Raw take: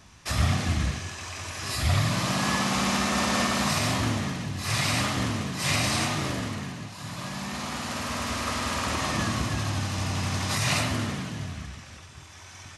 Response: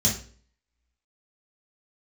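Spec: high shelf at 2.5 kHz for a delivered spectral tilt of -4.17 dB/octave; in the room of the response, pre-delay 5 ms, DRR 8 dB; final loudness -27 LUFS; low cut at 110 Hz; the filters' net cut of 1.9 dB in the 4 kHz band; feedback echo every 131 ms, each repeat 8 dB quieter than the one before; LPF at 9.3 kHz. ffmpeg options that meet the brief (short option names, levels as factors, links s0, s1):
-filter_complex "[0:a]highpass=110,lowpass=9300,highshelf=f=2500:g=6.5,equalizer=f=4000:t=o:g=-8.5,aecho=1:1:131|262|393|524|655:0.398|0.159|0.0637|0.0255|0.0102,asplit=2[s0][s1];[1:a]atrim=start_sample=2205,adelay=5[s2];[s1][s2]afir=irnorm=-1:irlink=0,volume=0.126[s3];[s0][s3]amix=inputs=2:normalize=0,volume=0.668"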